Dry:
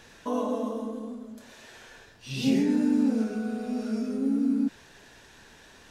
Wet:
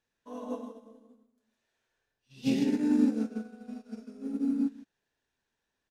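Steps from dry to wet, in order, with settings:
on a send: single-tap delay 158 ms −5.5 dB
on the sum: expander for the loud parts 2.5 to 1, over −40 dBFS

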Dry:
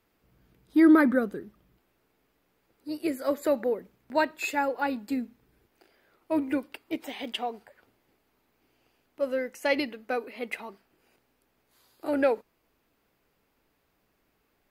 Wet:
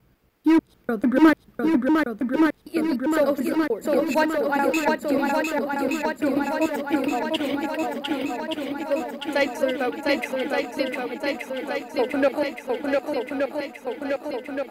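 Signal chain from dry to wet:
slices reordered back to front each 148 ms, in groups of 3
gain into a clipping stage and back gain 17 dB
feedback echo with a long and a short gap by turns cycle 1,173 ms, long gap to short 1.5 to 1, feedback 67%, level −3 dB
level +4 dB

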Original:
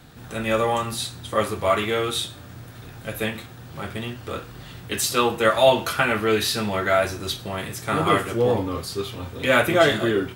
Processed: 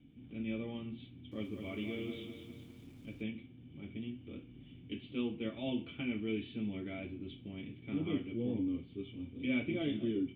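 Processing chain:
formant resonators in series i
0:01.11–0:03.23: feedback echo at a low word length 203 ms, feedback 55%, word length 10 bits, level −7 dB
level −3.5 dB

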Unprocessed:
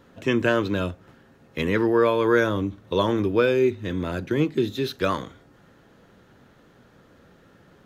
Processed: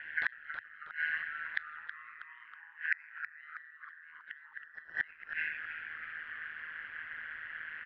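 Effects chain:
band-splitting scrambler in four parts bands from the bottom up 4123
low-pass filter 2,100 Hz 24 dB per octave
brickwall limiter −16.5 dBFS, peak gain reduction 6.5 dB
reverb whose tail is shaped and stops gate 450 ms falling, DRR 7.5 dB
downward compressor 2.5 to 1, threshold −37 dBFS, peak gain reduction 11.5 dB
ring modulation 78 Hz
gate with flip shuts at −31 dBFS, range −30 dB
on a send: echo with shifted repeats 321 ms, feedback 49%, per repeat −130 Hz, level −9.5 dB
on the sum: level +13.5 dB

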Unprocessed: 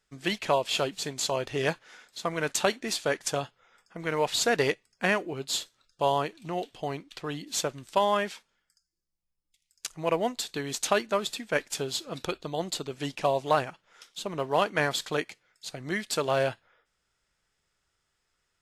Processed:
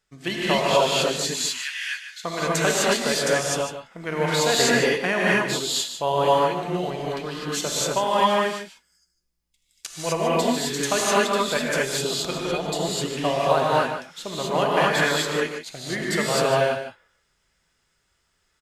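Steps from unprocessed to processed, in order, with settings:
0:01.23–0:02.24: Butterworth high-pass 1,600 Hz 36 dB per octave
on a send: single-tap delay 150 ms −10 dB
on the sum: reverb whose tail is shaped and stops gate 280 ms rising, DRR −6 dB

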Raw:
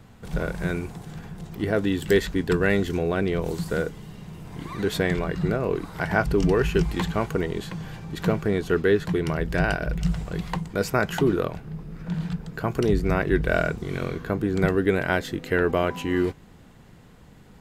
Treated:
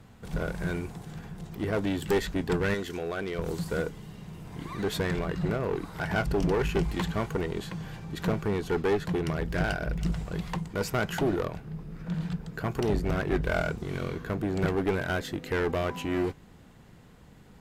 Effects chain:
0:02.74–0:03.39: low-shelf EQ 330 Hz −11.5 dB
asymmetric clip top −23 dBFS
level −3 dB

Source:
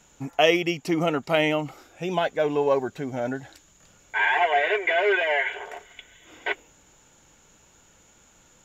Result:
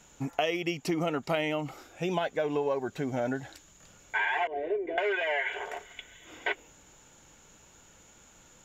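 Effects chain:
0:04.47–0:04.98: drawn EQ curve 170 Hz 0 dB, 260 Hz +10 dB, 1,400 Hz −25 dB
downward compressor 6 to 1, threshold −26 dBFS, peak gain reduction 12 dB

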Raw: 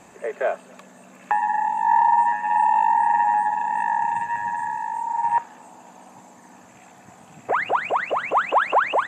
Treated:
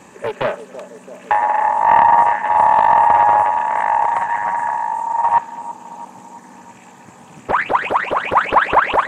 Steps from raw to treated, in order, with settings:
notch comb filter 700 Hz
on a send: bucket-brigade delay 333 ms, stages 2,048, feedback 68%, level −13.5 dB
on the sum: highs frequency-modulated by the lows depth 0.61 ms
level +6.5 dB

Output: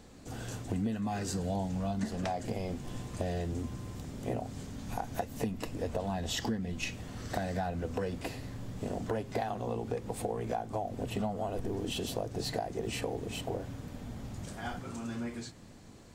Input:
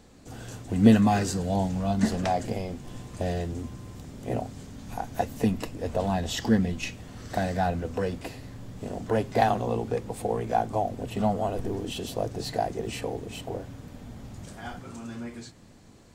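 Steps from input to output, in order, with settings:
downward compressor 12 to 1, threshold −30 dBFS, peak gain reduction 19 dB

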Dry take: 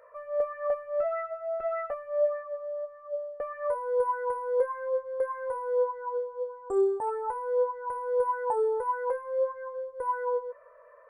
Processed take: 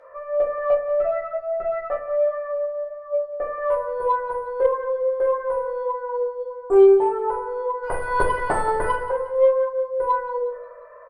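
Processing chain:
0:07.82–0:08.94: ceiling on every frequency bin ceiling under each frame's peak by 29 dB
low-pass filter 3,100 Hz 6 dB per octave
rectangular room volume 52 cubic metres, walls mixed, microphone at 0.92 metres
harmonic generator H 2 −21 dB, 8 −38 dB, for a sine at −10.5 dBFS
on a send: repeating echo 179 ms, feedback 45%, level −14.5 dB
on the sum: level +4.5 dB

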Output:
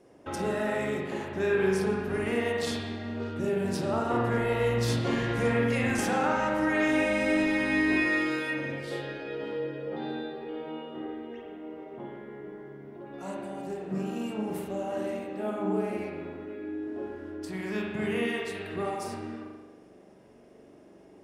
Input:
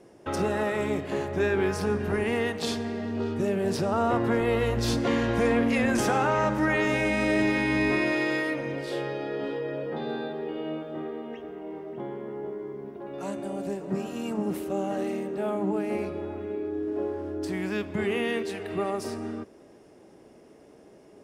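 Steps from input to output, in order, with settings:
spring reverb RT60 1.1 s, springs 42 ms, chirp 20 ms, DRR −2 dB
dynamic equaliser 9,600 Hz, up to +5 dB, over −49 dBFS, Q 0.82
level −5.5 dB

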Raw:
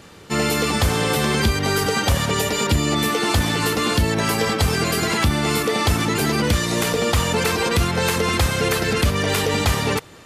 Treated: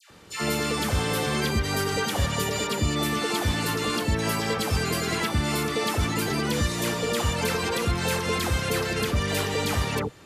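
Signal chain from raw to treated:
all-pass dispersion lows, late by 105 ms, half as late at 1,200 Hz
level −6 dB

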